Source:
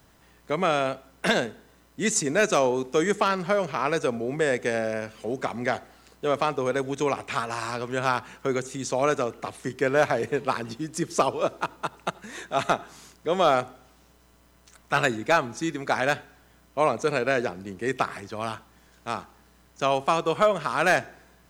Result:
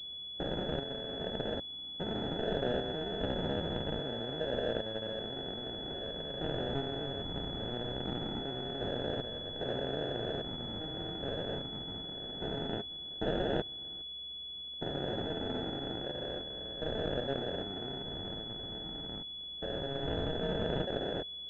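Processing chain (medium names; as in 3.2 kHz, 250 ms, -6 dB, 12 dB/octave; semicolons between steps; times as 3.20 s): spectrogram pixelated in time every 400 ms; dynamic bell 280 Hz, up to -4 dB, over -42 dBFS, Q 0.74; sample-rate reducer 1.1 kHz, jitter 0%; class-D stage that switches slowly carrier 3.4 kHz; trim -4.5 dB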